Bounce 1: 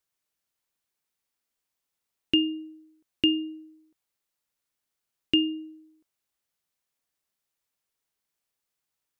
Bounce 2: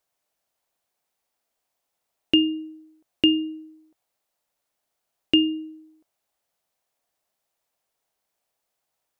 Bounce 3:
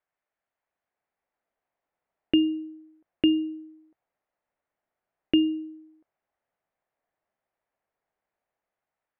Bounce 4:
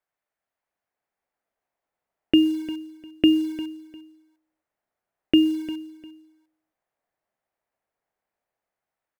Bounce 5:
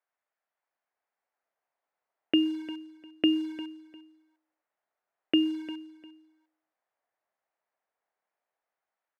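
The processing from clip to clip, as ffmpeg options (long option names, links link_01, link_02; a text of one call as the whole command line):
ffmpeg -i in.wav -af "equalizer=frequency=680:width=1.5:gain=11,bandreject=frequency=51.62:width_type=h:width=4,bandreject=frequency=103.24:width_type=h:width=4,bandreject=frequency=154.86:width_type=h:width=4,volume=3dB" out.wav
ffmpeg -i in.wav -filter_complex "[0:a]acrossover=split=890[link_01][link_02];[link_01]dynaudnorm=framelen=380:gausssize=5:maxgain=6dB[link_03];[link_03][link_02]amix=inputs=2:normalize=0,lowpass=frequency=1900:width_type=q:width=1.9,volume=-7dB" out.wav
ffmpeg -i in.wav -filter_complex "[0:a]asplit=2[link_01][link_02];[link_02]acrusher=bits=6:mix=0:aa=0.000001,volume=-4.5dB[link_03];[link_01][link_03]amix=inputs=2:normalize=0,aecho=1:1:351|702:0.158|0.0396" out.wav
ffmpeg -i in.wav -af "bandpass=frequency=1200:width_type=q:width=0.58:csg=0" out.wav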